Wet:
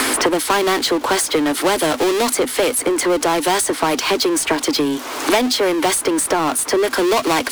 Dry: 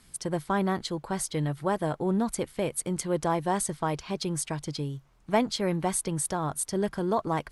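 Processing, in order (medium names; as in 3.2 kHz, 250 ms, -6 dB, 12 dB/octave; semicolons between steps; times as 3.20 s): Chebyshev high-pass 250 Hz, order 8; power-law waveshaper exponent 0.5; three bands compressed up and down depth 100%; trim +6 dB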